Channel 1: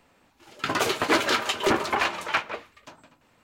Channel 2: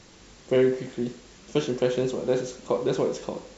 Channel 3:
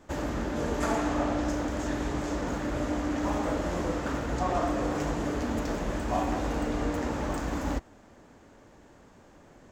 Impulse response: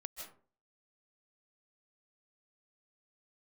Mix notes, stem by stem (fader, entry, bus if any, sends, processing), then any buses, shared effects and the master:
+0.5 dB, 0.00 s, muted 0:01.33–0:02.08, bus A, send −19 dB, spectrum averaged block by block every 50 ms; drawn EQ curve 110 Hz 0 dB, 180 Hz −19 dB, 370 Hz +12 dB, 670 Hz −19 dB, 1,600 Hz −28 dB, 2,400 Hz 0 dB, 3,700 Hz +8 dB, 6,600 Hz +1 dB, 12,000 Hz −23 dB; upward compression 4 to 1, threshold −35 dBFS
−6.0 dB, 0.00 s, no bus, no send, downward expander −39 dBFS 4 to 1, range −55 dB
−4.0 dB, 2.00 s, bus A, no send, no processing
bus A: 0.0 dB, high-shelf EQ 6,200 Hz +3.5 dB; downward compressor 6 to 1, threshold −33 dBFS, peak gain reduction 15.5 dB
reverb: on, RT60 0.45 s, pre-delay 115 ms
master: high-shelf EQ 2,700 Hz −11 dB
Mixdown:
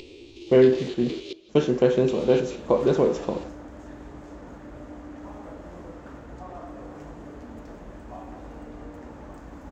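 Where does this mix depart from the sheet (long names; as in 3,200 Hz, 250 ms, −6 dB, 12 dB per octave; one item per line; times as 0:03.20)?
stem 2 −6.0 dB → +5.0 dB
stem 3 −4.0 dB → −10.5 dB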